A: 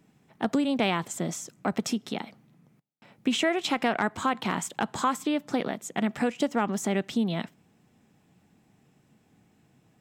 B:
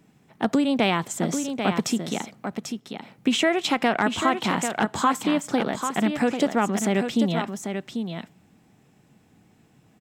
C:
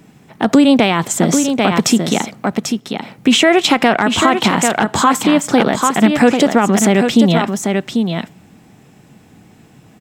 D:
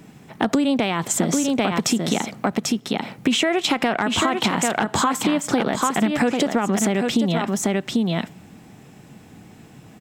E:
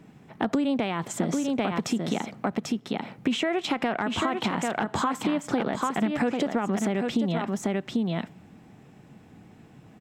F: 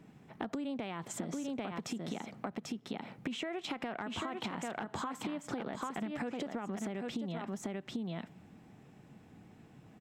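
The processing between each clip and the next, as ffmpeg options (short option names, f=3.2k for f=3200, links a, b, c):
-af "aecho=1:1:792:0.447,volume=4dB"
-af "alimiter=level_in=14dB:limit=-1dB:release=50:level=0:latency=1,volume=-1dB"
-af "acompressor=threshold=-17dB:ratio=6"
-af "highshelf=f=4.2k:g=-10.5,volume=-5.5dB"
-af "acompressor=threshold=-30dB:ratio=4,volume=-6dB"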